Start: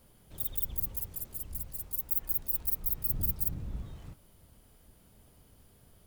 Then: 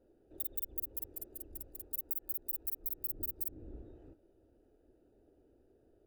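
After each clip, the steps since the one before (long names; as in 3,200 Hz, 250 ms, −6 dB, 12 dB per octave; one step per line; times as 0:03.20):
adaptive Wiener filter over 41 samples
low shelf with overshoot 240 Hz −11 dB, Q 3
downward compressor 10 to 1, threshold −33 dBFS, peak gain reduction 9.5 dB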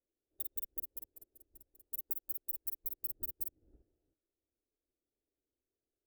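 expander for the loud parts 2.5 to 1, over −53 dBFS
level +1 dB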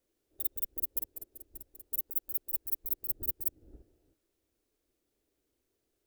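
compressor whose output falls as the input rises −40 dBFS, ratio −0.5
level +9 dB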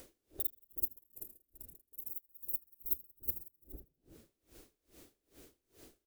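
echo with shifted repeats 80 ms, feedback 52%, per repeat −100 Hz, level −11 dB
upward compression, threshold −35 dBFS
tremolo with a sine in dB 2.4 Hz, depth 31 dB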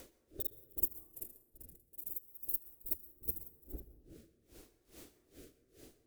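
rotating-speaker cabinet horn 0.75 Hz
on a send at −15 dB: convolution reverb RT60 1.1 s, pre-delay 107 ms
on the sum: level +4.5 dB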